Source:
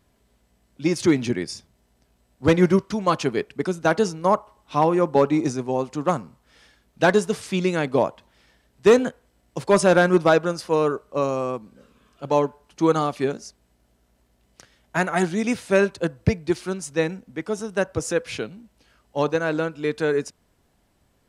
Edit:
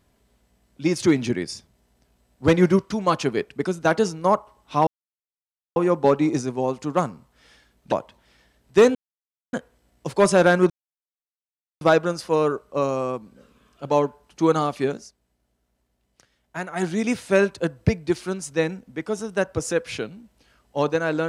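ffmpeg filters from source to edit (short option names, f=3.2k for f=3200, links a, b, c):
-filter_complex "[0:a]asplit=7[a][b][c][d][e][f][g];[a]atrim=end=4.87,asetpts=PTS-STARTPTS,afade=t=out:st=4.866:d=0.004:c=hsin,apad=pad_dur=0.89[h];[b]atrim=start=4.87:end=7.032,asetpts=PTS-STARTPTS,afade=t=in:d=0.004:c=hsin[i];[c]atrim=start=8.008:end=9.04,asetpts=PTS-STARTPTS,afade=t=out:st=1.028:d=0.004:c=hsin,apad=pad_dur=0.58[j];[d]atrim=start=9.04:end=10.21,asetpts=PTS-STARTPTS,afade=t=in:d=0.004:c=hsin,afade=t=out:st=1.166:d=0.004:c=hsin,apad=pad_dur=1.11[k];[e]atrim=start=10.21:end=13.51,asetpts=PTS-STARTPTS,afade=t=in:d=0.004:c=hsin,afade=t=out:st=3.16:d=0.14:silence=0.375837[l];[f]atrim=start=13.51:end=15.15,asetpts=PTS-STARTPTS,volume=-8.5dB[m];[g]atrim=start=15.15,asetpts=PTS-STARTPTS,afade=t=in:d=0.14:silence=0.375837[n];[h][i]concat=n=2:v=0:a=1[o];[j][k][l][m][n]concat=n=5:v=0:a=1[p];[o][p]acrossfade=d=0.004:c1=hsin:c2=hsin"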